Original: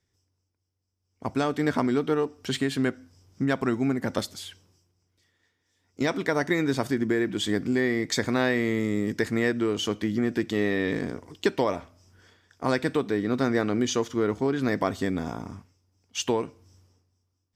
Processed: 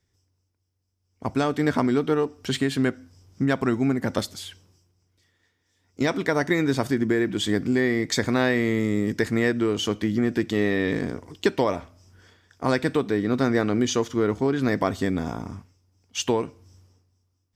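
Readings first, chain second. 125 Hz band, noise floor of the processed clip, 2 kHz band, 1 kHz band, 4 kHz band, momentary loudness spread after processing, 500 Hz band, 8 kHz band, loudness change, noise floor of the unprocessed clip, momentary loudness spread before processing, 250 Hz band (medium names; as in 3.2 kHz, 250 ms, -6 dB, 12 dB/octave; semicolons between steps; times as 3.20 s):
+4.0 dB, -73 dBFS, +2.0 dB, +2.0 dB, +2.0 dB, 8 LU, +2.5 dB, +2.0 dB, +2.5 dB, -77 dBFS, 7 LU, +2.5 dB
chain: bass shelf 110 Hz +4.5 dB; trim +2 dB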